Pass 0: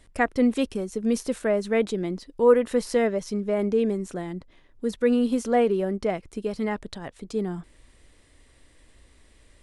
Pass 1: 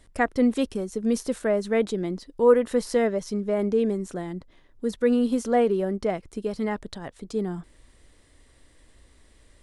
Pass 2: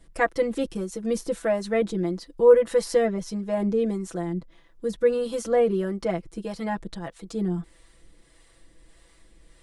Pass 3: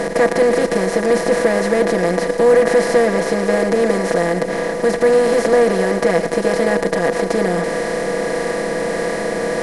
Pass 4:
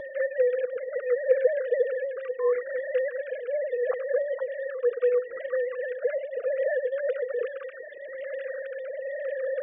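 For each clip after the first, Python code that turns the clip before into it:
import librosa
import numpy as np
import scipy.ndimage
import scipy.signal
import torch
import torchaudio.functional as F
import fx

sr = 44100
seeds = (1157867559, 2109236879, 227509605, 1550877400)

y1 = fx.peak_eq(x, sr, hz=2500.0, db=-3.5, octaves=0.51)
y2 = y1 + 0.99 * np.pad(y1, (int(6.0 * sr / 1000.0), 0))[:len(y1)]
y2 = fx.harmonic_tremolo(y2, sr, hz=1.6, depth_pct=50, crossover_hz=460.0)
y3 = fx.bin_compress(y2, sr, power=0.2)
y3 = y3 + 10.0 ** (-12.5 / 20.0) * np.pad(y3, (int(114 * sr / 1000.0), 0))[:len(y3)]
y4 = fx.sine_speech(y3, sr)
y4 = fx.comb_cascade(y4, sr, direction='falling', hz=0.37)
y4 = F.gain(torch.from_numpy(y4), -5.0).numpy()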